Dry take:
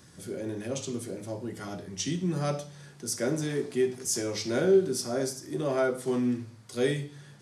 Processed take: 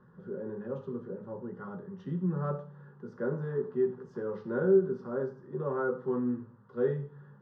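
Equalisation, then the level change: LPF 1800 Hz 24 dB/oct; fixed phaser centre 450 Hz, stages 8; 0.0 dB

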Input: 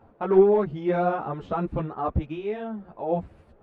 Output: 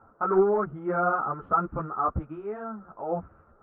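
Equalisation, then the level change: ladder low-pass 1400 Hz, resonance 80%; +7.0 dB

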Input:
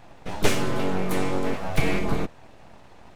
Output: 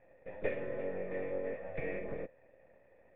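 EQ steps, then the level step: vocal tract filter e; -1.0 dB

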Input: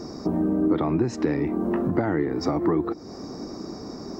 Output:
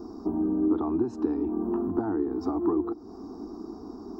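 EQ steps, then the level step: bell 5900 Hz -14.5 dB 2.8 oct; fixed phaser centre 550 Hz, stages 6; -1.5 dB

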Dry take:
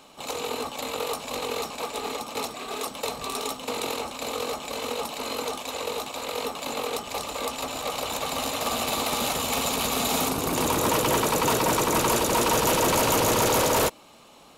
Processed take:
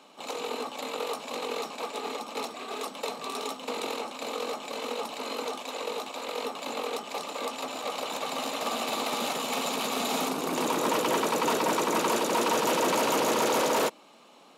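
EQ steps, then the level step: HPF 190 Hz 24 dB/oct; high shelf 7900 Hz -10 dB; -2.5 dB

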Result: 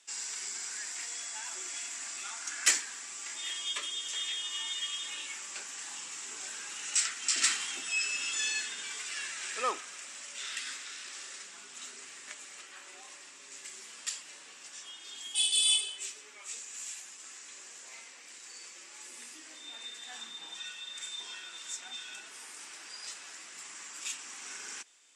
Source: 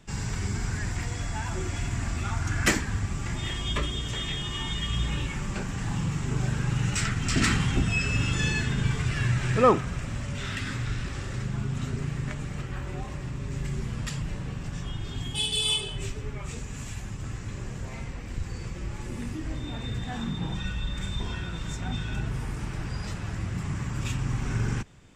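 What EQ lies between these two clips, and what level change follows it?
HPF 270 Hz 24 dB/oct; LPF 10000 Hz 24 dB/oct; differentiator; +5.5 dB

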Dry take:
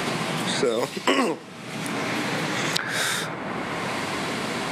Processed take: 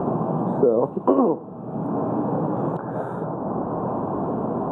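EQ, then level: inverse Chebyshev low-pass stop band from 1900 Hz, stop band 40 dB; +5.5 dB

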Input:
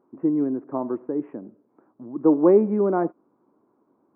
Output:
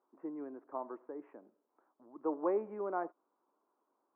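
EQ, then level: HPF 830 Hz 12 dB/oct; tilt -2 dB/oct; -7.0 dB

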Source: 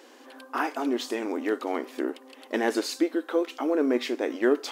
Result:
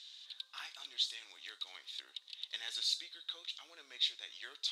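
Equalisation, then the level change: dynamic EQ 3900 Hz, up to -7 dB, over -48 dBFS, Q 0.97; ladder band-pass 3900 Hz, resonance 85%; +10.5 dB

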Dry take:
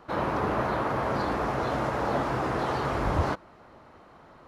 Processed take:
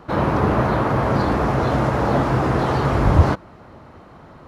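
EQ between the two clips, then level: bell 100 Hz +8.5 dB 3 oct; +6.0 dB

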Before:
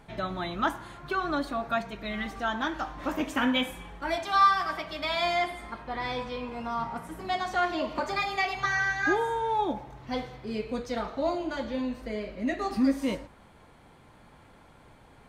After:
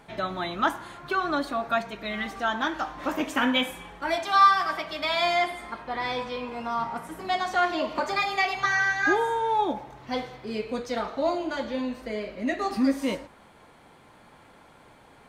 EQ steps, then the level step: low shelf 140 Hz -11.5 dB; +3.5 dB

